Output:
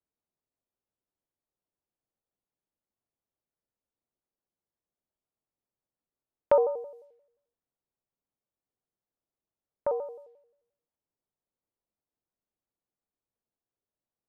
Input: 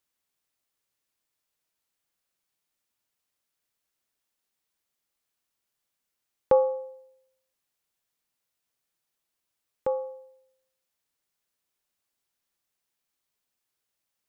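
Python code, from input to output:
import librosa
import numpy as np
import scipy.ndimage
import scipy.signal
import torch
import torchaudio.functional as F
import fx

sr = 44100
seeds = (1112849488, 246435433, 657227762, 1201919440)

y = fx.env_lowpass(x, sr, base_hz=700.0, full_db=-34.0)
y = fx.vibrato_shape(y, sr, shape='square', rate_hz=5.7, depth_cents=160.0)
y = F.gain(torch.from_numpy(y), -1.0).numpy()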